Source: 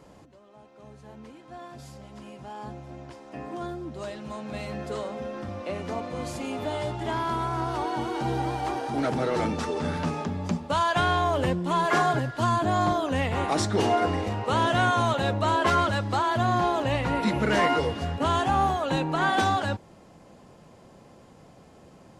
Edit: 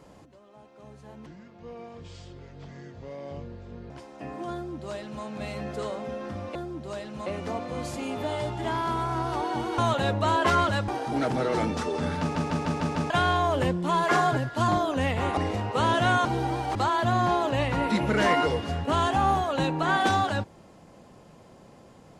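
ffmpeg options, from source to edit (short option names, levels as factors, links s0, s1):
-filter_complex "[0:a]asplit=17[s0][s1][s2][s3][s4][s5][s6][s7][s8][s9][s10][s11][s12][s13][s14][s15][s16];[s0]atrim=end=1.264[s17];[s1]atrim=start=1.26:end=3.03,asetpts=PTS-STARTPTS,asetrate=29547,aresample=44100[s18];[s2]atrim=start=3.026:end=5.682[s19];[s3]atrim=start=3.658:end=4.372[s20];[s4]atrim=start=5.678:end=8.202[s21];[s5]atrim=start=14.978:end=16.082[s22];[s6]atrim=start=8.698:end=10.172[s23];[s7]atrim=start=10.018:end=10.172[s24];[s8]atrim=start=10.018:end=10.172[s25];[s9]atrim=start=10.018:end=10.172[s26];[s10]atrim=start=10.018:end=10.172[s27];[s11]atrim=start=10.018:end=10.172[s28];[s12]atrim=start=10.918:end=12.502[s29];[s13]atrim=start=12.828:end=13.522[s30];[s14]atrim=start=14.098:end=14.982[s31];[s15]atrim=start=8.198:end=8.702[s32];[s16]atrim=start=16.078[s33];[s17][s18]acrossfade=d=0.004:c1=hsin:c2=hsin[s34];[s34][s19]acrossfade=d=0.004:c1=hsin:c2=hsin[s35];[s35][s20]acrossfade=d=0.004:c1=hsin:c2=hsin[s36];[s36][s21]acrossfade=d=0.004:c1=hsin:c2=hsin[s37];[s37][s22]acrossfade=d=0.004:c1=hsin:c2=hsin[s38];[s38][s23]acrossfade=d=0.004:c1=hsin:c2=hsin[s39];[s39][s24]acrossfade=d=0.004:c1=hsin:c2=hsin[s40];[s40][s25]acrossfade=d=0.004:c1=hsin:c2=hsin[s41];[s41][s26]acrossfade=d=0.004:c1=hsin:c2=hsin[s42];[s42][s27]acrossfade=d=0.004:c1=hsin:c2=hsin[s43];[s43][s28]acrossfade=d=0.004:c1=hsin:c2=hsin[s44];[s44][s29]acrossfade=d=0.004:c1=hsin:c2=hsin[s45];[s45][s30]acrossfade=d=0.004:c1=hsin:c2=hsin[s46];[s46][s31]acrossfade=d=0.004:c1=hsin:c2=hsin[s47];[s47][s32]acrossfade=d=0.004:c1=hsin:c2=hsin[s48];[s48][s33]acrossfade=d=0.004:c1=hsin:c2=hsin"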